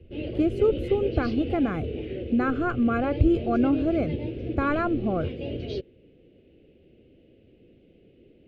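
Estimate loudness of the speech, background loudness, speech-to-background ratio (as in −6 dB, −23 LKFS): −26.0 LKFS, −33.0 LKFS, 7.0 dB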